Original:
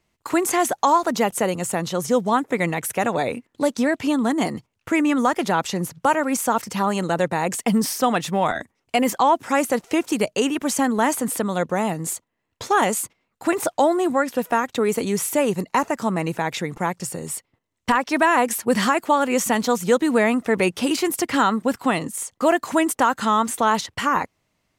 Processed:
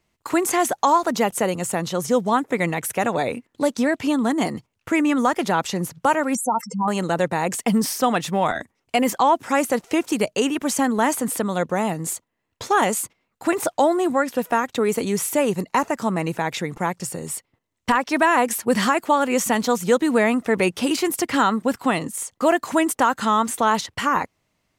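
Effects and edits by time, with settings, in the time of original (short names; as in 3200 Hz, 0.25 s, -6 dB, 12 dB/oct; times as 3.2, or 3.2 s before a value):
6.35–6.88 spectral contrast raised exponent 3.6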